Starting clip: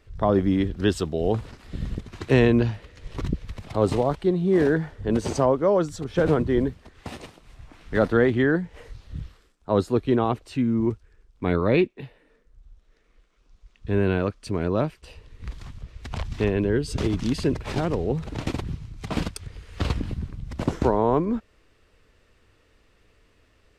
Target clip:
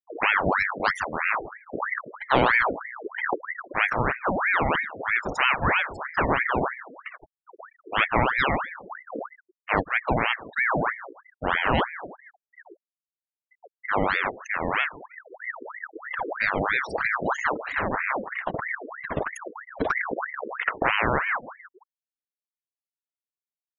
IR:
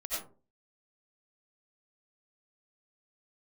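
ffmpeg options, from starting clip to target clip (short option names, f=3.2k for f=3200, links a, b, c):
-filter_complex "[0:a]asplit=2[a][b];[b]asplit=5[c][d][e][f][g];[c]adelay=155,afreqshift=-70,volume=-17dB[h];[d]adelay=310,afreqshift=-140,volume=-22.5dB[i];[e]adelay=465,afreqshift=-210,volume=-28dB[j];[f]adelay=620,afreqshift=-280,volume=-33.5dB[k];[g]adelay=775,afreqshift=-350,volume=-39.1dB[l];[h][i][j][k][l]amix=inputs=5:normalize=0[m];[a][m]amix=inputs=2:normalize=0,acrusher=bits=5:mode=log:mix=0:aa=0.000001,afftfilt=real='re*gte(hypot(re,im),0.0501)':imag='im*gte(hypot(re,im),0.0501)':win_size=1024:overlap=0.75,equalizer=f=390:t=o:w=0.84:g=-5.5,aeval=exprs='val(0)*sin(2*PI*1200*n/s+1200*0.7/3.1*sin(2*PI*3.1*n/s))':c=same,volume=2.5dB"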